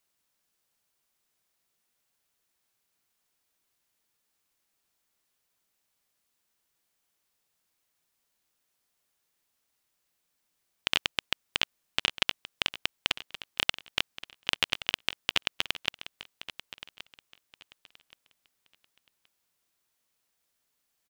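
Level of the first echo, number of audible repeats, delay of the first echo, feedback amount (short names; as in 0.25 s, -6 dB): -15.0 dB, 2, 1.124 s, 25%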